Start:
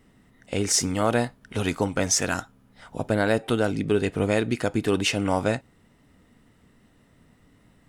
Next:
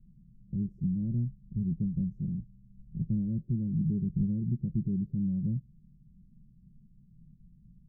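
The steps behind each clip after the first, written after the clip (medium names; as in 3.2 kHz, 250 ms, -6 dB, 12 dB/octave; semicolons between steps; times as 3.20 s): inverse Chebyshev low-pass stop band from 980 Hz, stop band 80 dB; comb 5.4 ms, depth 75%; trim +4 dB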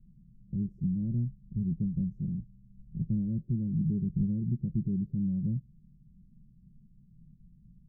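no audible change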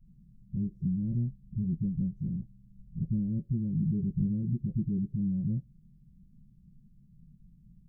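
phase dispersion highs, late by 50 ms, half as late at 340 Hz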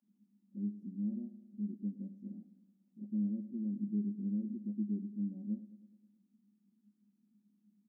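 rippled Chebyshev high-pass 200 Hz, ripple 6 dB; feedback delay 106 ms, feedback 59%, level -15 dB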